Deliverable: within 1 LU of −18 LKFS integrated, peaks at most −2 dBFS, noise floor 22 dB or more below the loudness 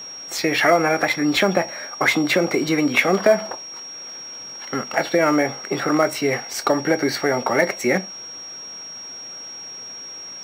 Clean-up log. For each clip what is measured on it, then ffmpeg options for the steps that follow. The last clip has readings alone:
interfering tone 5,600 Hz; level of the tone −33 dBFS; integrated loudness −20.0 LKFS; sample peak −2.5 dBFS; target loudness −18.0 LKFS
→ -af "bandreject=frequency=5600:width=30"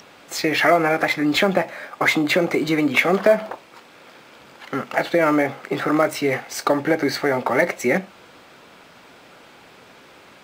interfering tone none found; integrated loudness −20.0 LKFS; sample peak −3.0 dBFS; target loudness −18.0 LKFS
→ -af "volume=2dB,alimiter=limit=-2dB:level=0:latency=1"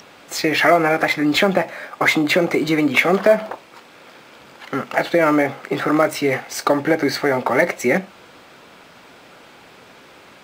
integrated loudness −18.0 LKFS; sample peak −2.0 dBFS; background noise floor −46 dBFS

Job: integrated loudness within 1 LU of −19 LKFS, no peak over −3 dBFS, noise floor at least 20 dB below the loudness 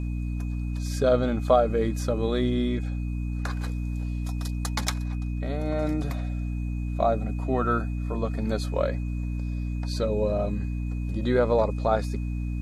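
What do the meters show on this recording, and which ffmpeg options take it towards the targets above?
mains hum 60 Hz; hum harmonics up to 300 Hz; level of the hum −27 dBFS; interfering tone 2,500 Hz; level of the tone −51 dBFS; integrated loudness −27.5 LKFS; sample peak −7.0 dBFS; target loudness −19.0 LKFS
→ -af "bandreject=frequency=60:width_type=h:width=6,bandreject=frequency=120:width_type=h:width=6,bandreject=frequency=180:width_type=h:width=6,bandreject=frequency=240:width_type=h:width=6,bandreject=frequency=300:width_type=h:width=6"
-af "bandreject=frequency=2500:width=30"
-af "volume=8.5dB,alimiter=limit=-3dB:level=0:latency=1"

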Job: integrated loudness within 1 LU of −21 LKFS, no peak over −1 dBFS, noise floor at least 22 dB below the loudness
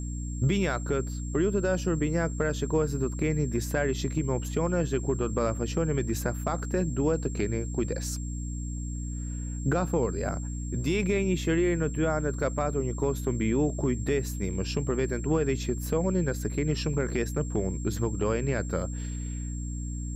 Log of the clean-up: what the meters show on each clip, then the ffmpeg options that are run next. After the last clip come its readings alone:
mains hum 60 Hz; hum harmonics up to 300 Hz; level of the hum −31 dBFS; interfering tone 7,500 Hz; level of the tone −44 dBFS; integrated loudness −29.0 LKFS; sample peak −15.5 dBFS; target loudness −21.0 LKFS
→ -af "bandreject=frequency=60:width_type=h:width=4,bandreject=frequency=120:width_type=h:width=4,bandreject=frequency=180:width_type=h:width=4,bandreject=frequency=240:width_type=h:width=4,bandreject=frequency=300:width_type=h:width=4"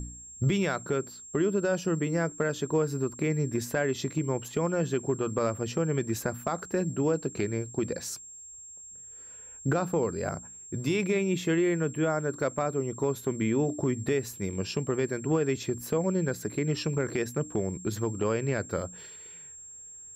mains hum none found; interfering tone 7,500 Hz; level of the tone −44 dBFS
→ -af "bandreject=frequency=7500:width=30"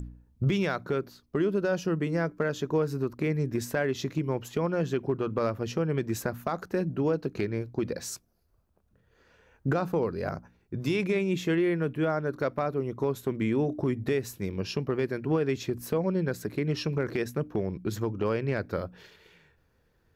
interfering tone none found; integrated loudness −30.0 LKFS; sample peak −16.5 dBFS; target loudness −21.0 LKFS
→ -af "volume=9dB"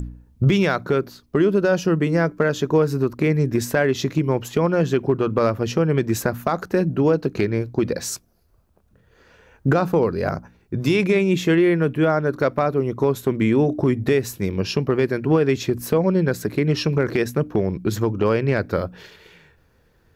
integrated loudness −21.0 LKFS; sample peak −7.5 dBFS; background noise floor −59 dBFS

